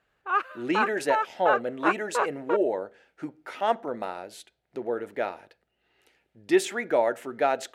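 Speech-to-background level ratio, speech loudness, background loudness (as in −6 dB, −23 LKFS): 0.5 dB, −28.5 LKFS, −29.0 LKFS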